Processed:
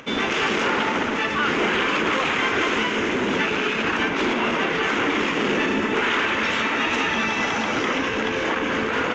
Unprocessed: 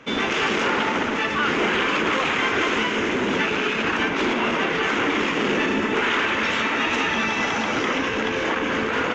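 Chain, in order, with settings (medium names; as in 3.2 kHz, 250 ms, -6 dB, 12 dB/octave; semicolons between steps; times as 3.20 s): upward compressor, threshold -39 dBFS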